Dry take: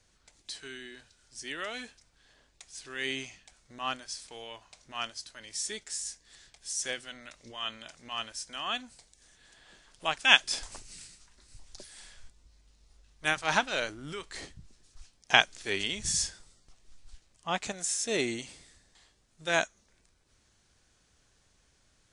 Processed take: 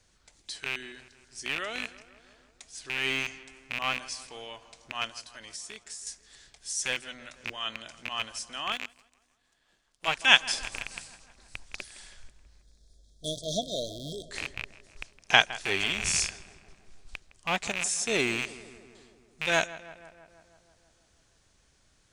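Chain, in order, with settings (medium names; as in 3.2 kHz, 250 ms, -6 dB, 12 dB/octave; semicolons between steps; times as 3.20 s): rattle on loud lows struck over -51 dBFS, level -20 dBFS; 5.11–6.07 s: compression 12:1, threshold -40 dBFS, peak gain reduction 10.5 dB; 12.63–14.31 s: spectral selection erased 720–3200 Hz; filtered feedback delay 162 ms, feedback 68%, low-pass 2.7 kHz, level -16.5 dB; 8.72–10.08 s: power-law waveshaper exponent 1.4; trim +1.5 dB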